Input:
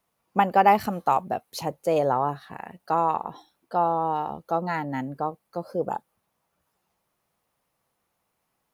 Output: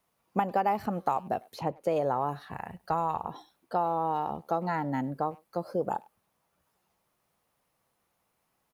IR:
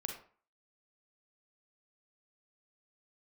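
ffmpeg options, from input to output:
-filter_complex "[0:a]acrossover=split=1700|3600[link_01][link_02][link_03];[link_01]acompressor=threshold=-25dB:ratio=4[link_04];[link_02]acompressor=threshold=-51dB:ratio=4[link_05];[link_03]acompressor=threshold=-57dB:ratio=4[link_06];[link_04][link_05][link_06]amix=inputs=3:normalize=0,asplit=3[link_07][link_08][link_09];[link_07]afade=type=out:start_time=2.52:duration=0.02[link_10];[link_08]asubboost=boost=7.5:cutoff=110,afade=type=in:start_time=2.52:duration=0.02,afade=type=out:start_time=3.27:duration=0.02[link_11];[link_09]afade=type=in:start_time=3.27:duration=0.02[link_12];[link_10][link_11][link_12]amix=inputs=3:normalize=0,asplit=2[link_13][link_14];[link_14]adelay=100,highpass=300,lowpass=3400,asoftclip=type=hard:threshold=-24dB,volume=-24dB[link_15];[link_13][link_15]amix=inputs=2:normalize=0"

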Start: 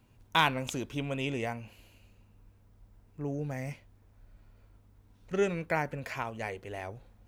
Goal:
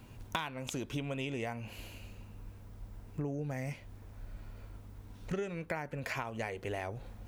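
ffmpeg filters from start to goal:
ffmpeg -i in.wav -af "acompressor=threshold=-44dB:ratio=16,volume=10.5dB" out.wav

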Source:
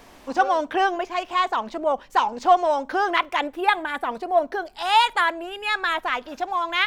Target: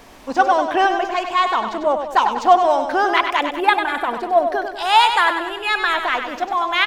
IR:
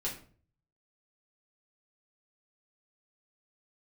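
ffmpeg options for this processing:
-af "aecho=1:1:97|194|291|388|485|582:0.422|0.219|0.114|0.0593|0.0308|0.016,volume=4dB"

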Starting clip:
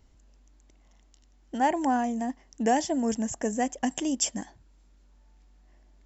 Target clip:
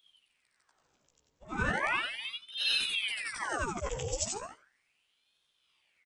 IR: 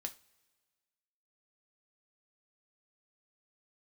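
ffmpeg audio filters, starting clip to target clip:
-filter_complex "[0:a]afftfilt=real='re':imag='-im':win_size=8192:overlap=0.75,asplit=2[link_01][link_02];[link_02]adelay=15,volume=-3.5dB[link_03];[link_01][link_03]amix=inputs=2:normalize=0,aeval=exprs='val(0)*sin(2*PI*1800*n/s+1800*0.9/0.36*sin(2*PI*0.36*n/s))':channel_layout=same"

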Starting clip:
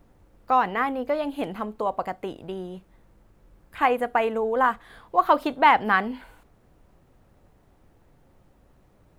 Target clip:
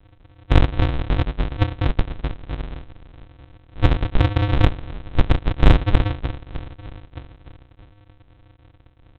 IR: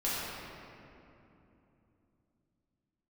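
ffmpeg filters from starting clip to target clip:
-filter_complex "[0:a]asplit=8[link_01][link_02][link_03][link_04][link_05][link_06][link_07][link_08];[link_02]adelay=307,afreqshift=-62,volume=-16dB[link_09];[link_03]adelay=614,afreqshift=-124,volume=-19.7dB[link_10];[link_04]adelay=921,afreqshift=-186,volume=-23.5dB[link_11];[link_05]adelay=1228,afreqshift=-248,volume=-27.2dB[link_12];[link_06]adelay=1535,afreqshift=-310,volume=-31dB[link_13];[link_07]adelay=1842,afreqshift=-372,volume=-34.7dB[link_14];[link_08]adelay=2149,afreqshift=-434,volume=-38.5dB[link_15];[link_01][link_09][link_10][link_11][link_12][link_13][link_14][link_15]amix=inputs=8:normalize=0,afreqshift=-330,aresample=8000,acrusher=samples=39:mix=1:aa=0.000001,aresample=44100,aeval=exprs='0.447*(cos(1*acos(clip(val(0)/0.447,-1,1)))-cos(1*PI/2))+0.0178*(cos(6*acos(clip(val(0)/0.447,-1,1)))-cos(6*PI/2))':channel_layout=same,volume=6.5dB"

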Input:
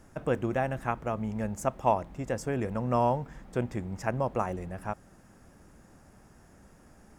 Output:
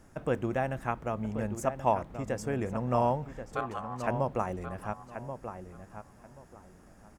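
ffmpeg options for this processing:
ffmpeg -i in.wav -filter_complex "[0:a]asettb=1/sr,asplit=3[link_01][link_02][link_03];[link_01]atrim=end=3.554[link_04];[link_02]atrim=start=3.55:end=4.07,asetpts=PTS-STARTPTS,afade=type=in:duration=0.004:curve=qsin,afade=type=out:start_time=0.516:duration=0.004:curve=qsin,aeval=exprs='val(0)*sin(2*PI*930*n/s)':channel_layout=same[link_05];[link_03]atrim=start=4.066[link_06];[link_04][link_05]acrossfade=duration=0.004:curve1=hsin:curve2=qsin[link_07];[link_07][link_06]acrossfade=duration=0.004:curve1=qsin:curve2=hsin,asplit=2[link_08][link_09];[link_09]adelay=1082,lowpass=frequency=2700:poles=1,volume=-9dB,asplit=2[link_10][link_11];[link_11]adelay=1082,lowpass=frequency=2700:poles=1,volume=0.21,asplit=2[link_12][link_13];[link_13]adelay=1082,lowpass=frequency=2700:poles=1,volume=0.21[link_14];[link_08][link_10][link_12][link_14]amix=inputs=4:normalize=0,volume=-1.5dB" out.wav

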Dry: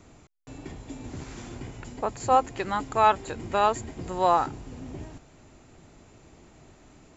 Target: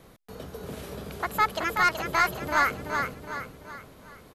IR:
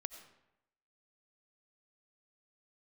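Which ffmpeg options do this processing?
-af "asoftclip=type=tanh:threshold=-13.5dB,aecho=1:1:620|1240|1860|2480|3100:0.531|0.234|0.103|0.0452|0.0199,asetrate=72765,aresample=44100"

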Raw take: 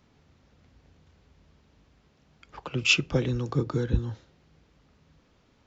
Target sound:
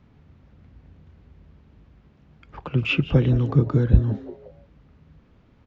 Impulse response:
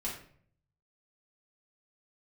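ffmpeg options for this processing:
-filter_complex "[0:a]acrossover=split=3500[link_01][link_02];[link_02]acompressor=threshold=-45dB:ratio=4:attack=1:release=60[link_03];[link_01][link_03]amix=inputs=2:normalize=0,bass=frequency=250:gain=8,treble=frequency=4000:gain=-14,asplit=4[link_04][link_05][link_06][link_07];[link_05]adelay=172,afreqshift=150,volume=-17.5dB[link_08];[link_06]adelay=344,afreqshift=300,volume=-25.7dB[link_09];[link_07]adelay=516,afreqshift=450,volume=-33.9dB[link_10];[link_04][link_08][link_09][link_10]amix=inputs=4:normalize=0,volume=2.5dB"

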